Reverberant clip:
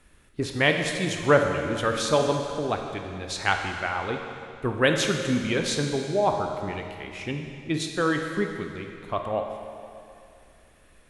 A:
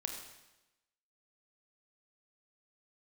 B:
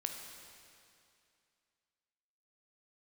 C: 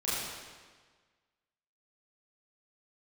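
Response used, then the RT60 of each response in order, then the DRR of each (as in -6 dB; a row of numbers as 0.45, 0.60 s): B; 1.0, 2.5, 1.5 s; 2.5, 3.0, -10.5 dB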